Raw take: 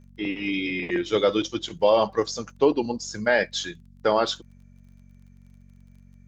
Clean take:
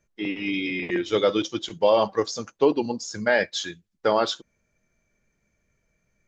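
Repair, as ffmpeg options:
ffmpeg -i in.wav -af "adeclick=threshold=4,bandreject=frequency=46.6:width_type=h:width=4,bandreject=frequency=93.2:width_type=h:width=4,bandreject=frequency=139.8:width_type=h:width=4,bandreject=frequency=186.4:width_type=h:width=4,bandreject=frequency=233:width_type=h:width=4" out.wav

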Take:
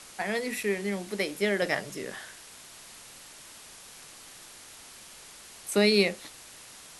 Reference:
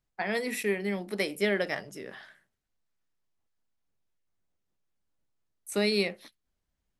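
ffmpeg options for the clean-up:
ffmpeg -i in.wav -af "afwtdn=0.005,asetnsamples=nb_out_samples=441:pad=0,asendcmd='1.62 volume volume -4.5dB',volume=0dB" out.wav

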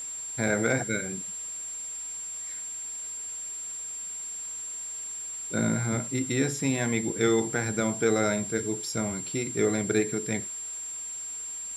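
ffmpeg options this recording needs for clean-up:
ffmpeg -i in.wav -af "bandreject=frequency=7400:width=30,afftdn=noise_reduction=30:noise_floor=-37" out.wav

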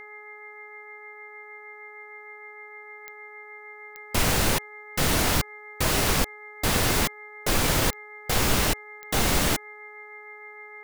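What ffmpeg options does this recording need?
ffmpeg -i in.wav -af "adeclick=threshold=4,bandreject=frequency=421.3:width_type=h:width=4,bandreject=frequency=842.6:width_type=h:width=4,bandreject=frequency=1263.9:width_type=h:width=4,bandreject=frequency=1685.2:width_type=h:width=4,bandreject=frequency=2106.5:width_type=h:width=4,bandreject=frequency=2100:width=30" out.wav

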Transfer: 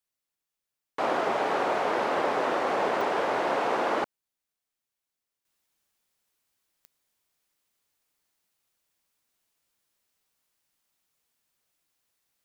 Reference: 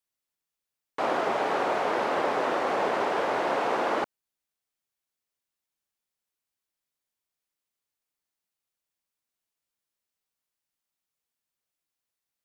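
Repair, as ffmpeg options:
ffmpeg -i in.wav -af "adeclick=threshold=4,asetnsamples=nb_out_samples=441:pad=0,asendcmd='5.45 volume volume -9.5dB',volume=0dB" out.wav

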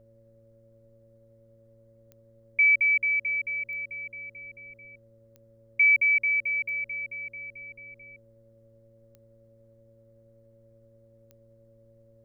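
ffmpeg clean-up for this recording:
ffmpeg -i in.wav -af "adeclick=threshold=4,bandreject=frequency=114.1:width_type=h:width=4,bandreject=frequency=228.2:width_type=h:width=4,bandreject=frequency=342.3:width_type=h:width=4,bandreject=frequency=456.4:width_type=h:width=4,bandreject=frequency=570.5:width_type=h:width=4,bandreject=frequency=560:width=30,agate=range=-21dB:threshold=-50dB" out.wav

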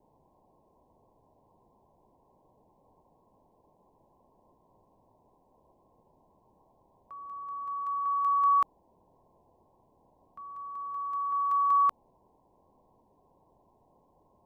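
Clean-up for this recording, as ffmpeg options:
ffmpeg -i in.wav -af "afwtdn=0.0022" out.wav

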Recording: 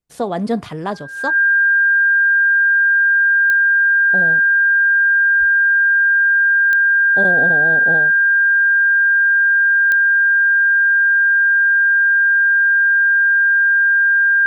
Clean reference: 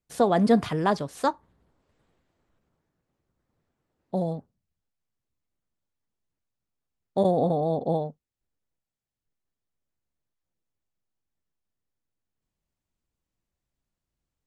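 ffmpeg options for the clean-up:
ffmpeg -i in.wav -filter_complex "[0:a]adeclick=threshold=4,bandreject=frequency=1600:width=30,asplit=3[link_01][link_02][link_03];[link_01]afade=type=out:start_time=5.39:duration=0.02[link_04];[link_02]highpass=frequency=140:width=0.5412,highpass=frequency=140:width=1.3066,afade=type=in:start_time=5.39:duration=0.02,afade=type=out:start_time=5.51:duration=0.02[link_05];[link_03]afade=type=in:start_time=5.51:duration=0.02[link_06];[link_04][link_05][link_06]amix=inputs=3:normalize=0" out.wav

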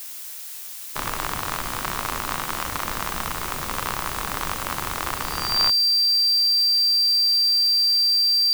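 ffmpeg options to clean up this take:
ffmpeg -i in.wav -af "bandreject=frequency=4700:width=30,afftdn=noise_reduction=30:noise_floor=-36" out.wav

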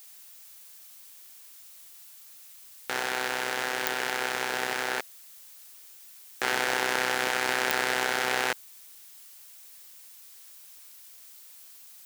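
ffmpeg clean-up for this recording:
ffmpeg -i in.wav -af "adeclick=threshold=4,afftdn=noise_reduction=27:noise_floor=-50" out.wav

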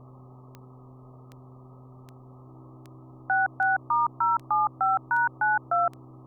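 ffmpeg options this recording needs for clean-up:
ffmpeg -i in.wav -af "adeclick=threshold=4,bandreject=frequency=127.9:width_type=h:width=4,bandreject=frequency=255.8:width_type=h:width=4,bandreject=frequency=383.7:width_type=h:width=4,bandreject=frequency=320:width=30,afwtdn=0.0063" out.wav

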